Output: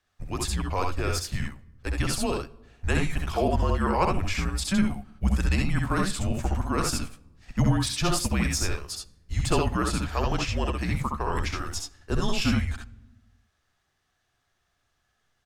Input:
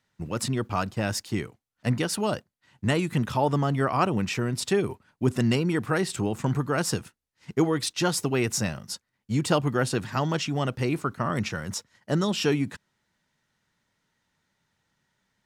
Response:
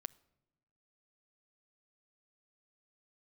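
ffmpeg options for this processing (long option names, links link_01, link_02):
-filter_complex "[0:a]afreqshift=-190,aecho=1:1:66|80:0.668|0.398[link_01];[1:a]atrim=start_sample=2205,asetrate=35721,aresample=44100[link_02];[link_01][link_02]afir=irnorm=-1:irlink=0,volume=2dB"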